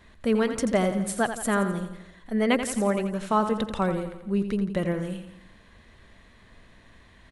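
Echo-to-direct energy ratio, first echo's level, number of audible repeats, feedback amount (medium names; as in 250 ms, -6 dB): -8.0 dB, -9.5 dB, 5, 52%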